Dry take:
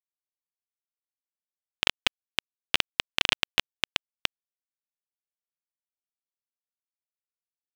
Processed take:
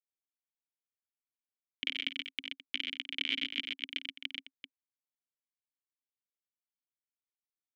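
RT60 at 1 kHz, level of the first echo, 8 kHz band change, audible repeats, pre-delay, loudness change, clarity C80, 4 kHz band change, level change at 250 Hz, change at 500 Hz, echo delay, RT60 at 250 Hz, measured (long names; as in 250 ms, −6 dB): no reverb audible, −14.0 dB, below −20 dB, 5, no reverb audible, −9.0 dB, no reverb audible, −8.0 dB, −3.5 dB, −18.0 dB, 53 ms, no reverb audible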